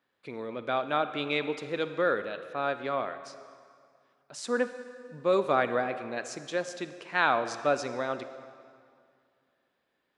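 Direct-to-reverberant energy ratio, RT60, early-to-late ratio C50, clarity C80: 10.5 dB, 2.3 s, 11.0 dB, 12.0 dB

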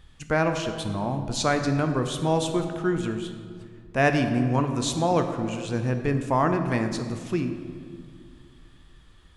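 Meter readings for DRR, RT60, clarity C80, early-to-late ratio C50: 6.0 dB, 2.0 s, 8.5 dB, 7.5 dB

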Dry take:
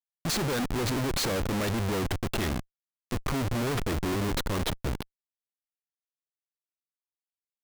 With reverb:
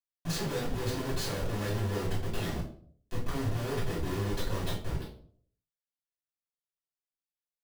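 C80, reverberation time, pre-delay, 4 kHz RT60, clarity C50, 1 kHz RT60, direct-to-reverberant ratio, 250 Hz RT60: 10.0 dB, 0.55 s, 3 ms, 0.35 s, 6.5 dB, 0.50 s, -7.5 dB, 0.60 s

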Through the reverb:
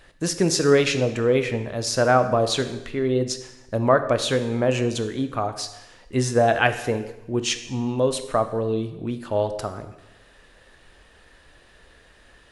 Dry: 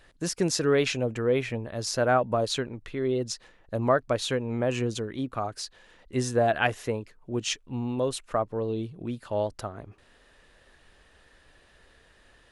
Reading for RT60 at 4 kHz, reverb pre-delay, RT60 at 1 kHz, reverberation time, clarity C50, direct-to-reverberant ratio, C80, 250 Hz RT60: 0.90 s, 7 ms, 0.95 s, 0.90 s, 11.5 dB, 8.5 dB, 13.0 dB, 0.95 s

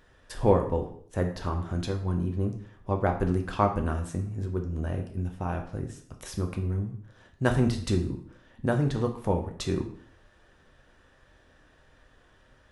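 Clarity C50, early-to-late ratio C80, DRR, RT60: 9.0 dB, 12.5 dB, 3.5 dB, 0.55 s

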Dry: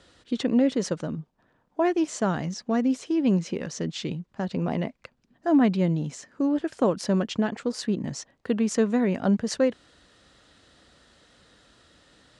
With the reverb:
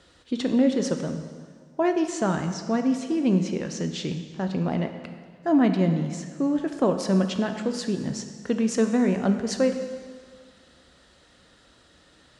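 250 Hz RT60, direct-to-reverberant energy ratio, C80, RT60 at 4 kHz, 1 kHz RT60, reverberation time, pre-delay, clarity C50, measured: 1.7 s, 6.0 dB, 9.0 dB, 1.7 s, 1.8 s, 1.8 s, 4 ms, 8.0 dB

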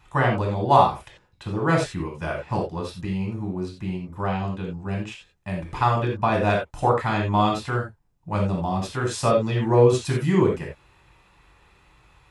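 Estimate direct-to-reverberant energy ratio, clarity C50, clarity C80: -1.0 dB, 5.0 dB, 10.5 dB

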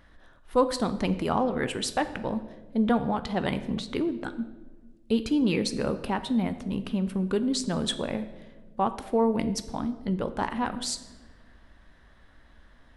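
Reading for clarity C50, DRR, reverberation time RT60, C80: 13.0 dB, 10.0 dB, 1.4 s, 15.0 dB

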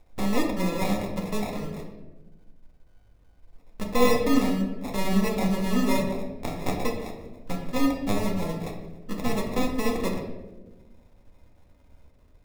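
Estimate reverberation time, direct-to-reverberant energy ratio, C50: 1.2 s, -0.5 dB, 5.5 dB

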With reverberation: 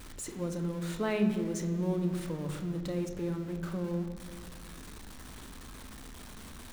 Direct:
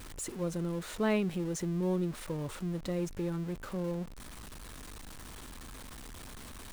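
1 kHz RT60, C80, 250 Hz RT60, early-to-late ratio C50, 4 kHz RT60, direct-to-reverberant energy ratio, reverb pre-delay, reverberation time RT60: 1.7 s, 10.0 dB, 2.2 s, 8.5 dB, 1.2 s, 5.5 dB, 3 ms, 1.8 s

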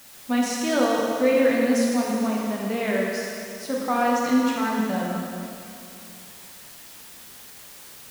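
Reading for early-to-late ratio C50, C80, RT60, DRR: -1.0 dB, 0.0 dB, 2.6 s, -4.0 dB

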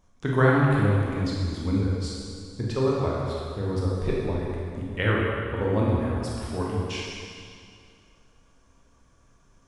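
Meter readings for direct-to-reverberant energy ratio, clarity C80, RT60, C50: -5.0 dB, 0.0 dB, 2.3 s, -2.0 dB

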